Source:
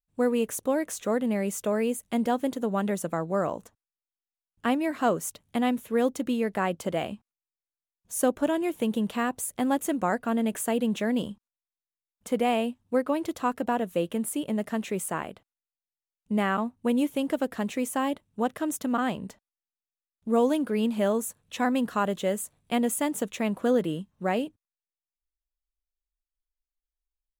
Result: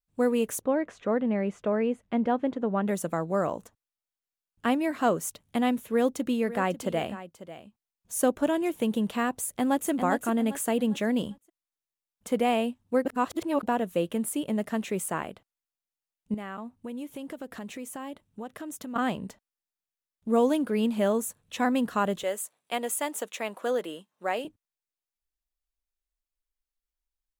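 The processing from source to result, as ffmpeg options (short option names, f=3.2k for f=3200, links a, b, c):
-filter_complex "[0:a]asplit=3[a][b][c];[a]afade=t=out:st=0.61:d=0.02[d];[b]lowpass=2.3k,afade=t=in:st=0.61:d=0.02,afade=t=out:st=2.87:d=0.02[e];[c]afade=t=in:st=2.87:d=0.02[f];[d][e][f]amix=inputs=3:normalize=0,asplit=3[g][h][i];[g]afade=t=out:st=6.44:d=0.02[j];[h]aecho=1:1:545:0.188,afade=t=in:st=6.44:d=0.02,afade=t=out:st=8.67:d=0.02[k];[i]afade=t=in:st=8.67:d=0.02[l];[j][k][l]amix=inputs=3:normalize=0,asplit=2[m][n];[n]afade=t=in:st=9.46:d=0.01,afade=t=out:st=9.89:d=0.01,aecho=0:1:400|800|1200|1600:0.473151|0.165603|0.057961|0.0202864[o];[m][o]amix=inputs=2:normalize=0,asettb=1/sr,asplit=3[p][q][r];[p]atrim=end=16.344[s];[q]atrim=start=16.34:end=18.96,asetpts=PTS-STARTPTS,afade=t=in:d=0.004:c=qsin,afade=t=out:st=2.616:d=0.004:c=qsin,acompressor=threshold=-38dB:ratio=3:attack=3.2:release=140:knee=1:detection=peak[t];[r]atrim=start=18.956[u];[s][t]acrossfade=d=0.004:c1=hsin:c2=qsin[v];[v][u]acrossfade=d=0.004:c1=qsin:c2=hsin,asettb=1/sr,asplit=3[w][x][y];[w]atrim=end=22.234[z];[x]atrim=start=22.23:end=24.45,asetpts=PTS-STARTPTS,afade=t=in:d=0.004:c=qsin,afade=t=out:st=2.216:d=0.004:c=qsin,highpass=500[aa];[y]atrim=start=24.446[ab];[z][aa]acrossfade=d=0.004:c1=hsin:c2=qsin[ac];[ac][ab]acrossfade=d=0.004:c1=qsin:c2=hsin,asplit=3[ad][ae][af];[ad]atrim=end=13.052[ag];[ae]atrim=start=13.048:end=13.632,asetpts=PTS-STARTPTS,areverse[ah];[af]atrim=start=13.628[ai];[ag][ah]acrossfade=d=0.004:c1=hsin:c2=hsin[aj];[aj][ai]acrossfade=d=0.004:c1=hsin:c2=hsin"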